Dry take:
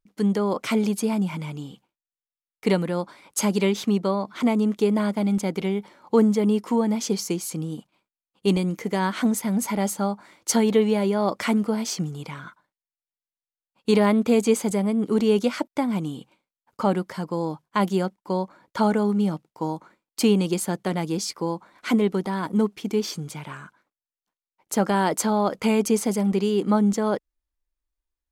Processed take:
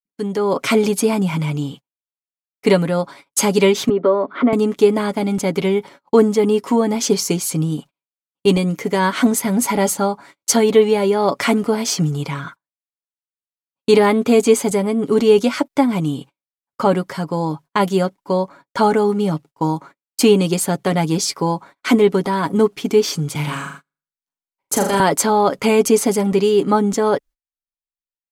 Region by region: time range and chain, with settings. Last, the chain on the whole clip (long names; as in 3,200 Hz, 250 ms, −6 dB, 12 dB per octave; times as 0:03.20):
0:03.89–0:04.53: downward compressor 2 to 1, threshold −25 dBFS + loudspeaker in its box 260–2,800 Hz, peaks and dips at 260 Hz +7 dB, 390 Hz +5 dB, 570 Hz +6 dB, 830 Hz −4 dB, 1,300 Hz +5 dB, 2,600 Hz −8 dB
0:23.35–0:25.00: high-shelf EQ 7,500 Hz +4.5 dB + flutter between parallel walls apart 6.9 metres, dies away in 0.52 s + multiband upward and downward compressor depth 40%
whole clip: noise gate −45 dBFS, range −34 dB; comb filter 7.2 ms, depth 50%; automatic gain control gain up to 9 dB